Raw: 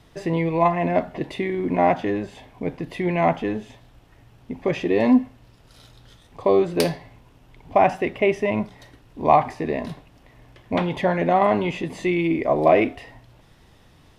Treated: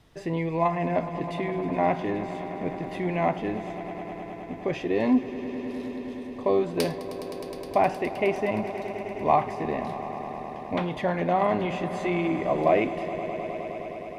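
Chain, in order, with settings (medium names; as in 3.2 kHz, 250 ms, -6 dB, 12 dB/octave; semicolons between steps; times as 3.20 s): echo with a slow build-up 104 ms, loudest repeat 5, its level -16 dB; trim -5.5 dB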